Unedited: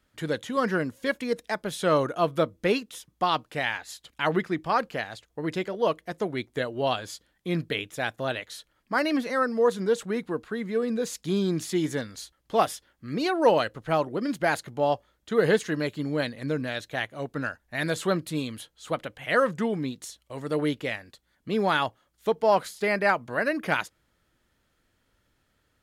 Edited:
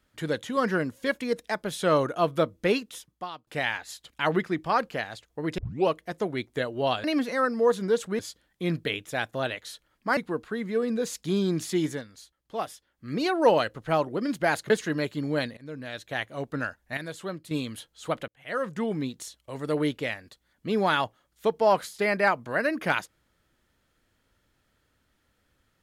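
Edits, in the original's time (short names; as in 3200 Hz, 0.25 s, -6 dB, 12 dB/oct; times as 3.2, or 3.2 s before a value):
2.97–3.47 fade out quadratic, to -20 dB
5.58 tape start 0.31 s
9.02–10.17 move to 7.04
11.85–13.1 dip -9 dB, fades 0.19 s
14.7–15.52 cut
16.39–17.08 fade in linear, from -20 dB
17.79–18.33 gain -9.5 dB
19.1–19.8 fade in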